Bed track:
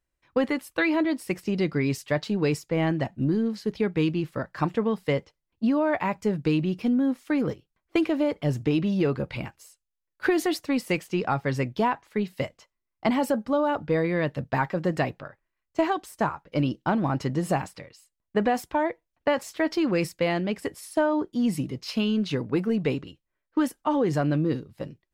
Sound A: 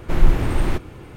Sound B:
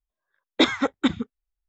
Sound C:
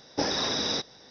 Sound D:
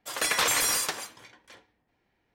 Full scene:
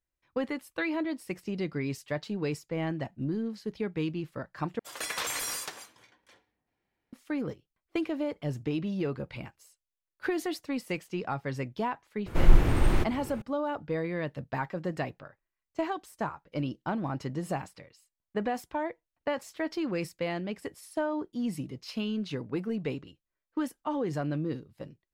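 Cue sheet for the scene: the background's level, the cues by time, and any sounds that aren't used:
bed track −7.5 dB
0:04.79: overwrite with D −8.5 dB
0:12.26: mix in A −3.5 dB
not used: B, C

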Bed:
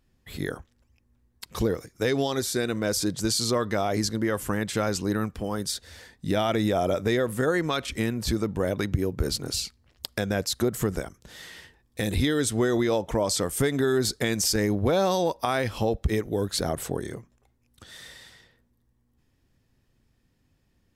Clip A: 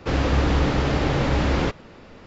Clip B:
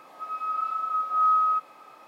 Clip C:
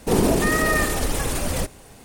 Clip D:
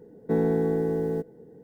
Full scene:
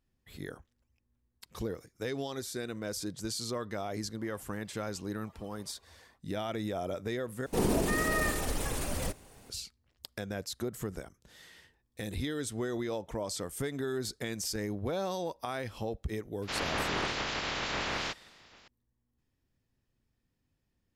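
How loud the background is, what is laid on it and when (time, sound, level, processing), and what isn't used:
bed −11 dB
0:04.13: mix in B −8 dB, fades 0.10 s + harmonic-percussive split with one part muted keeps percussive
0:07.46: overwrite with C −9.5 dB
0:16.42: mix in A −13.5 dB + ceiling on every frequency bin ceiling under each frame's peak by 26 dB
not used: D

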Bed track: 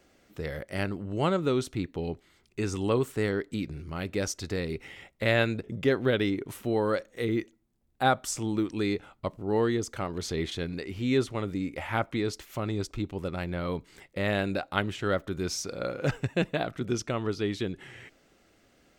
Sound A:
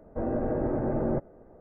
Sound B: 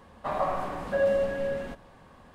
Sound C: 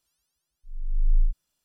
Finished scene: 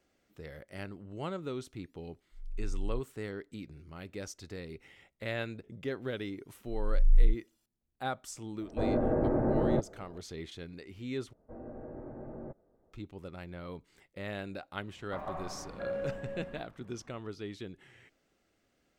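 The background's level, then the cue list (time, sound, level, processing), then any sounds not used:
bed track −11.5 dB
0:01.68: mix in C −9 dB + brickwall limiter −19 dBFS
0:06.02: mix in C −1 dB
0:08.61: mix in A
0:11.33: overwrite with A −16.5 dB
0:14.87: mix in B −12 dB + bass and treble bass +4 dB, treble −10 dB

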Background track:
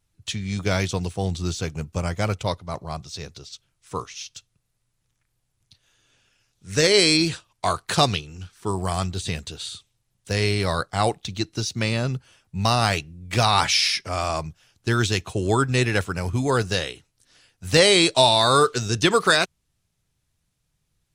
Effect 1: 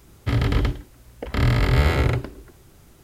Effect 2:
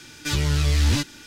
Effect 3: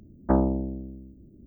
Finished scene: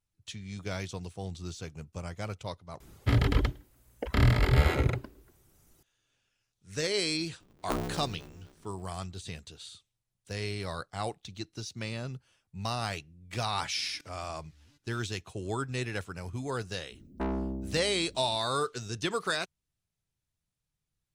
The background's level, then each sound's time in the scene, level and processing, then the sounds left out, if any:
background track −13 dB
0:02.80: overwrite with 1 −2.5 dB + reverb reduction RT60 1.9 s
0:07.40: mix in 3 −11.5 dB + ring modulator with a square carrier 100 Hz
0:13.75: mix in 2 −12.5 dB + gate with flip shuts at −26 dBFS, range −29 dB
0:16.91: mix in 3 −3 dB + soft clipping −25 dBFS

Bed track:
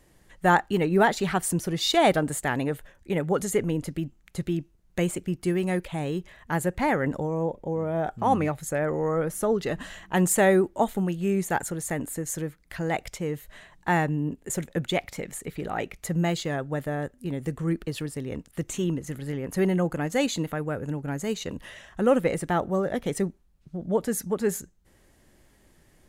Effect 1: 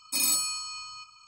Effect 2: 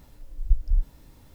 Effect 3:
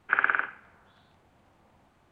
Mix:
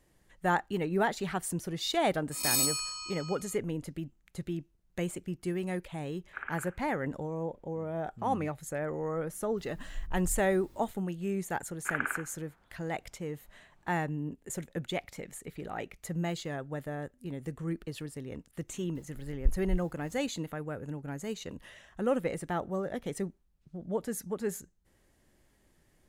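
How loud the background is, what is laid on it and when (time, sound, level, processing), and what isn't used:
bed track −8 dB
0:02.31: mix in 1 −3 dB + peak hold with a rise ahead of every peak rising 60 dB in 0.37 s
0:06.24: mix in 3 −16.5 dB
0:09.57: mix in 2 −9 dB + compressor whose output falls as the input rises −23 dBFS
0:11.76: mix in 3 −8.5 dB
0:18.95: mix in 2 −4 dB + tremolo along a rectified sine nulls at 3.5 Hz

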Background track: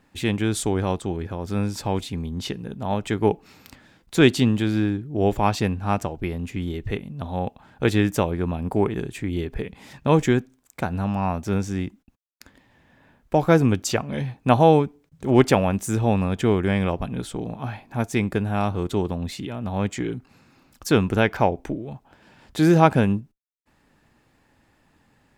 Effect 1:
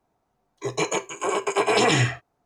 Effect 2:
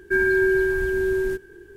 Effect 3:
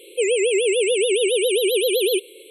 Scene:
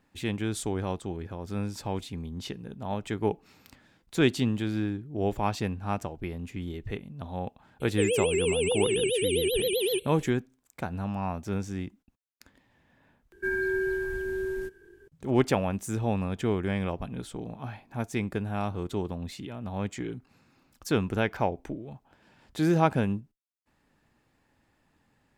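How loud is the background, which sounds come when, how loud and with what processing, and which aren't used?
background track −7.5 dB
0:07.80: mix in 3 −7.5 dB
0:13.32: overwrite with 2 −9 dB
not used: 1

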